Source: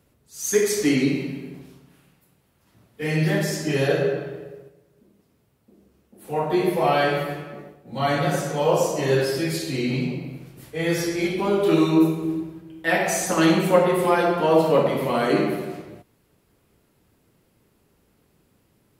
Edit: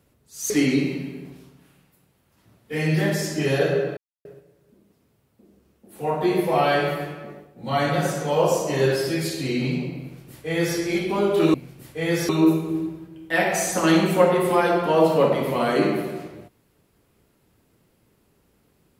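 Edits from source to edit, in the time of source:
0.5–0.79 cut
4.26–4.54 mute
10.32–11.07 copy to 11.83

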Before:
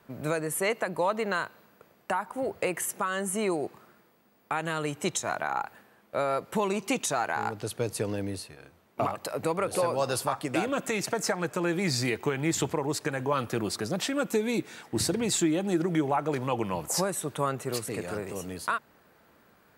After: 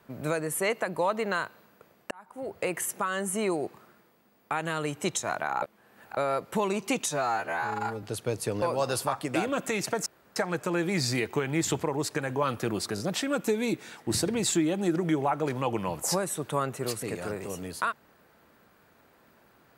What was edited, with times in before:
2.11–2.74 fade in
5.62–6.17 reverse
7.09–7.56 stretch 2×
8.15–9.82 cut
11.26 insert room tone 0.30 s
13.85 stutter 0.02 s, 3 plays

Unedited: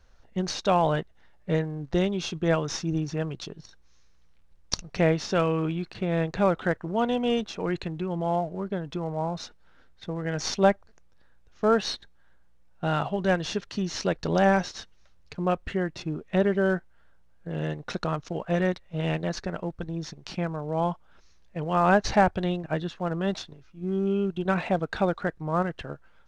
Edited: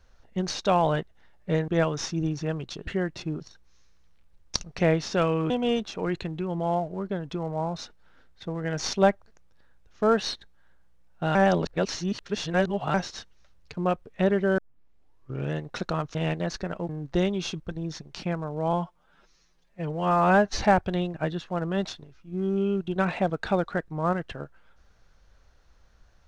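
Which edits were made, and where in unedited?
1.68–2.39 move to 19.72
5.68–7.11 cut
12.96–14.55 reverse
15.67–16.2 move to 3.58
16.72 tape start 0.95 s
18.29–18.98 cut
20.85–22.1 stretch 1.5×

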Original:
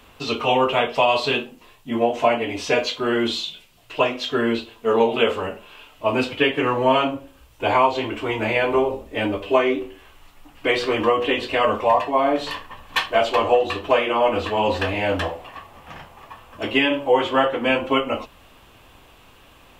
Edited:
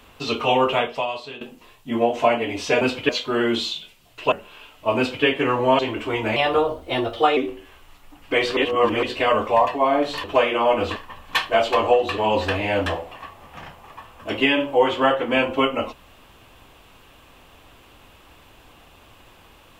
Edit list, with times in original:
0.73–1.41 fade out quadratic, to -16 dB
4.04–5.5 cut
6.15–6.43 copy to 2.81
6.97–7.95 cut
8.52–9.7 speed 117%
10.9–11.36 reverse
13.79–14.51 move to 12.57

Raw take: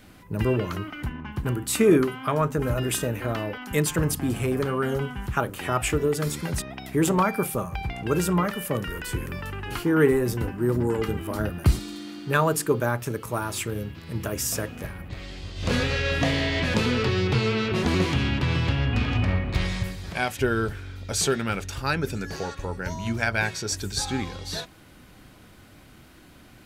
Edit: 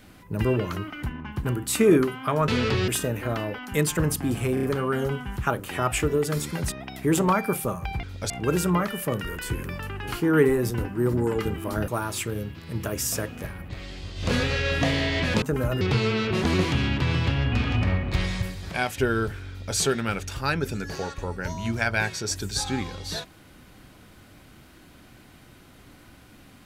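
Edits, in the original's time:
2.48–2.87 swap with 16.82–17.22
4.53 stutter 0.03 s, 4 plays
11.51–13.28 cut
20.9–21.17 copy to 7.93

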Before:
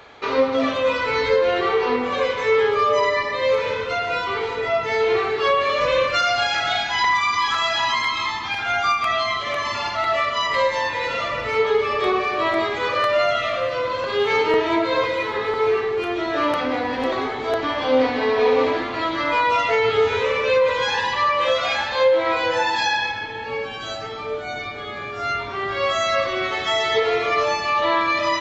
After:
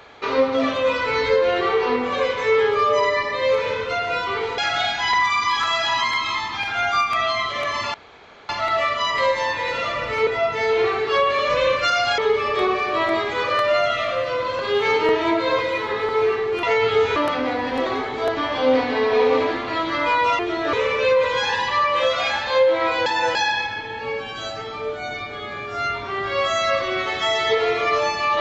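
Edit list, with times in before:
4.58–6.49 move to 11.63
9.85 insert room tone 0.55 s
16.08–16.42 swap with 19.65–20.18
22.51–22.8 reverse

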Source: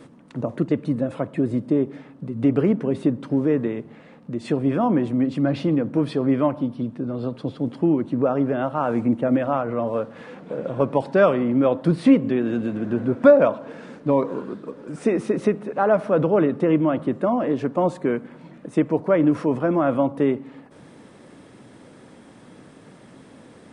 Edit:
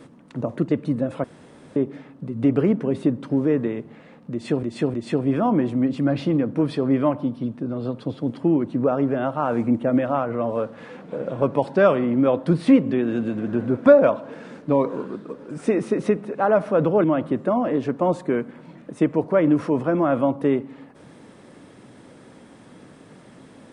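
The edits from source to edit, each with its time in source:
1.24–1.76 room tone
4.32–4.63 loop, 3 plays
16.42–16.8 cut

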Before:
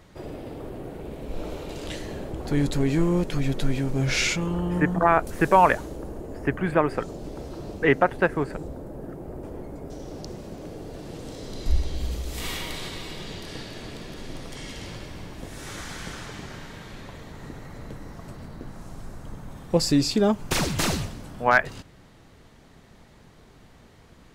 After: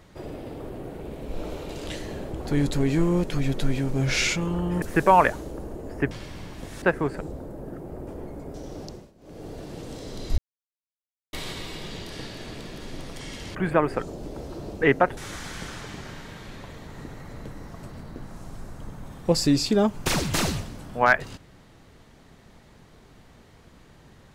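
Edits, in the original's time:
4.82–5.27 cut
6.56–8.18 swap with 14.91–15.62
10.19–10.83 dip -19.5 dB, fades 0.29 s
11.74–12.69 mute

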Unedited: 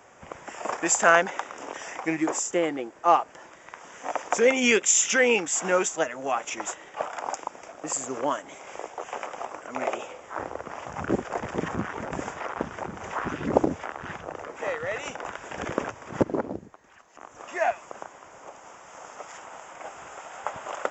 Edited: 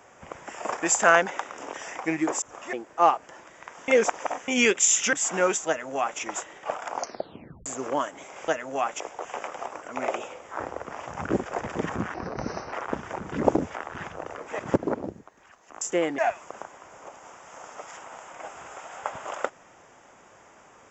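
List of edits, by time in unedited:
2.42–2.79 swap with 17.28–17.59
3.94–4.54 reverse
5.19–5.44 cut
5.99–6.51 copy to 8.79
7.27 tape stop 0.70 s
11.93–12.41 speed 81%
13–13.41 cut
14.68–16.06 cut

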